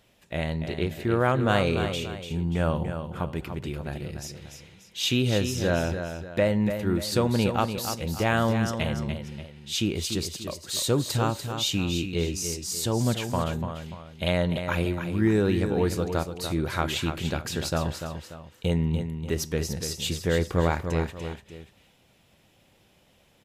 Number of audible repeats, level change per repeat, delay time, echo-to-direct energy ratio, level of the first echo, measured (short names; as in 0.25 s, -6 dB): 2, -8.0 dB, 0.292 s, -7.5 dB, -8.0 dB